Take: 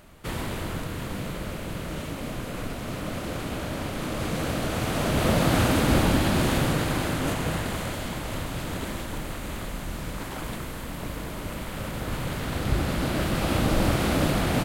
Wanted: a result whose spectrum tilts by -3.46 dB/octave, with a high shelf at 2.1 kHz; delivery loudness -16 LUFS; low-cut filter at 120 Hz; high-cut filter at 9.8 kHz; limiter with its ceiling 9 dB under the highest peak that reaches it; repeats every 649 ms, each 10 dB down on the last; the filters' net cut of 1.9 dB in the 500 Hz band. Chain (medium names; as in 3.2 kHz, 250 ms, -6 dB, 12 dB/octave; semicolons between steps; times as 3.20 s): high-pass 120 Hz; low-pass 9.8 kHz; peaking EQ 500 Hz -3 dB; treble shelf 2.1 kHz +8 dB; peak limiter -17 dBFS; feedback delay 649 ms, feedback 32%, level -10 dB; trim +12.5 dB